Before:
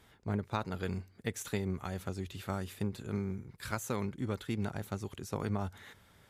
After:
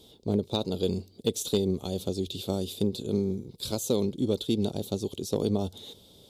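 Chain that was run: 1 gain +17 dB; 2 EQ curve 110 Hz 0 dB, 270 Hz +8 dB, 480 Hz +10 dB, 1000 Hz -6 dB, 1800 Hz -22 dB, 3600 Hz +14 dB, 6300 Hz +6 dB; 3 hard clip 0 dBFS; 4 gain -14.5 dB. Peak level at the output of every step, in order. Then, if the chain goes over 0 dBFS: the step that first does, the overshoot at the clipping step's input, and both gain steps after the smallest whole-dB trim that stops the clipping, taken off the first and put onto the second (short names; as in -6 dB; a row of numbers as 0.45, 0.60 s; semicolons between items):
-1.0, +3.5, 0.0, -14.5 dBFS; step 2, 3.5 dB; step 1 +13 dB, step 4 -10.5 dB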